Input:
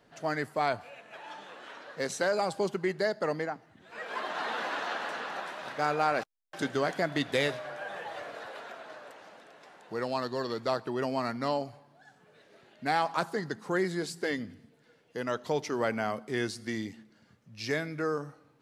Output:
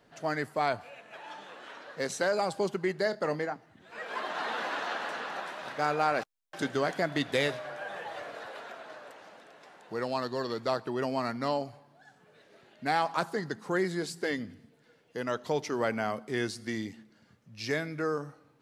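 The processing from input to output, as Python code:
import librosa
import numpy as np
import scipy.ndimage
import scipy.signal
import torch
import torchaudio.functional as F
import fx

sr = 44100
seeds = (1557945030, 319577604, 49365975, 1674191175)

y = fx.doubler(x, sr, ms=27.0, db=-12.0, at=(3.03, 3.54))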